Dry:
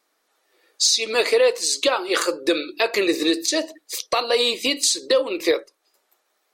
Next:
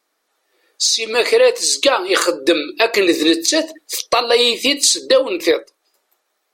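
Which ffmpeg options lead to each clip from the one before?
-af "dynaudnorm=f=200:g=11:m=11.5dB"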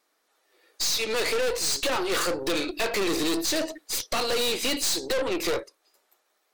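-af "aeval=exprs='(tanh(15.8*val(0)+0.5)-tanh(0.5))/15.8':c=same"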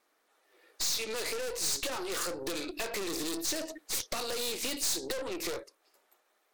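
-filter_complex "[0:a]acrossover=split=4200[a][b];[a]acompressor=threshold=-34dB:ratio=6[c];[b]aeval=exprs='val(0)*sin(2*PI*310*n/s)':c=same[d];[c][d]amix=inputs=2:normalize=0"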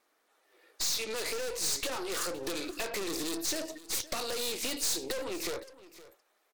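-af "aecho=1:1:515:0.126"

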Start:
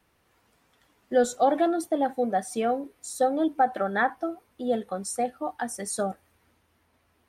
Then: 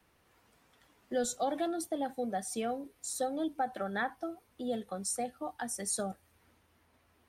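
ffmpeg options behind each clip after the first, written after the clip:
-filter_complex "[0:a]acrossover=split=160|3000[a][b][c];[b]acompressor=threshold=-47dB:ratio=1.5[d];[a][d][c]amix=inputs=3:normalize=0,volume=-1dB"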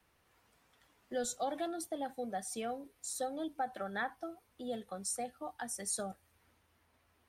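-af "equalizer=f=260:t=o:w=2.1:g=-3.5,volume=-2.5dB"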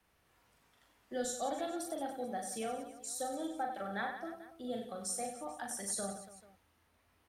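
-af "aecho=1:1:40|96|174.4|284.2|437.8:0.631|0.398|0.251|0.158|0.1,volume=-2dB"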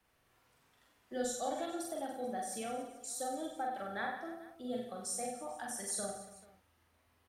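-filter_complex "[0:a]asplit=2[a][b];[b]adelay=48,volume=-5dB[c];[a][c]amix=inputs=2:normalize=0,volume=-1.5dB"

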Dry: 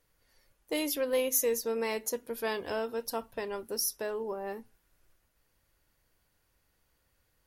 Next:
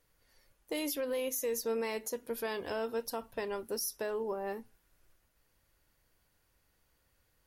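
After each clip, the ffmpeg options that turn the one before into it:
-af "alimiter=level_in=2dB:limit=-24dB:level=0:latency=1:release=87,volume=-2dB"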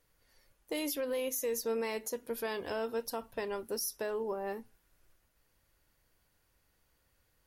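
-af anull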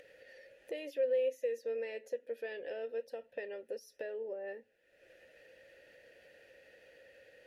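-filter_complex "[0:a]asplit=3[a][b][c];[a]bandpass=f=530:t=q:w=8,volume=0dB[d];[b]bandpass=f=1.84k:t=q:w=8,volume=-6dB[e];[c]bandpass=f=2.48k:t=q:w=8,volume=-9dB[f];[d][e][f]amix=inputs=3:normalize=0,acompressor=mode=upward:threshold=-45dB:ratio=2.5,volume=5dB"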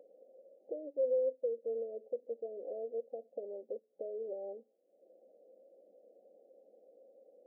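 -af "afftfilt=real='re*between(b*sr/4096,190,800)':imag='im*between(b*sr/4096,190,800)':win_size=4096:overlap=0.75"

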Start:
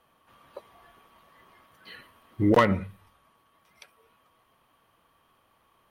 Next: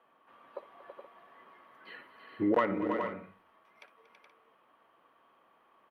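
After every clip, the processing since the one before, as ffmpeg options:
-filter_complex "[0:a]acrossover=split=220 2700:gain=0.0891 1 0.141[a][b][c];[a][b][c]amix=inputs=3:normalize=0,acompressor=threshold=-28dB:ratio=2,aecho=1:1:59|234|328|422|475:0.133|0.168|0.398|0.398|0.178"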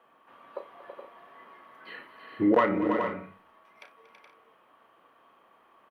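-filter_complex "[0:a]asplit=2[a][b];[b]adelay=33,volume=-9dB[c];[a][c]amix=inputs=2:normalize=0,volume=4.5dB"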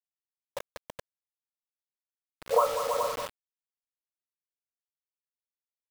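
-filter_complex "[0:a]asplit=2[a][b];[b]adelay=190,highpass=300,lowpass=3.4k,asoftclip=type=hard:threshold=-20.5dB,volume=-7dB[c];[a][c]amix=inputs=2:normalize=0,afftfilt=real='re*between(b*sr/4096,450,1400)':imag='im*between(b*sr/4096,450,1400)':win_size=4096:overlap=0.75,acrusher=bits=5:mix=0:aa=0.000001"

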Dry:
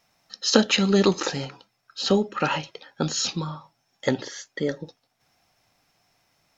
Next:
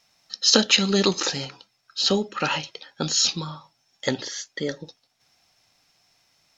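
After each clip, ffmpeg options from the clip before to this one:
-af "equalizer=f=4.9k:t=o:w=2.1:g=9,volume=-2.5dB"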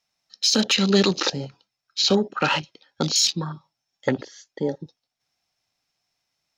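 -filter_complex "[0:a]afwtdn=0.0282,acrossover=split=220[a][b];[b]alimiter=limit=-12.5dB:level=0:latency=1:release=103[c];[a][c]amix=inputs=2:normalize=0,volume=3.5dB"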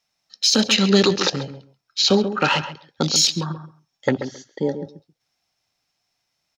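-filter_complex "[0:a]asplit=2[a][b];[b]adelay=134,lowpass=f=1.6k:p=1,volume=-9.5dB,asplit=2[c][d];[d]adelay=134,lowpass=f=1.6k:p=1,volume=0.16[e];[a][c][e]amix=inputs=3:normalize=0,volume=2.5dB"

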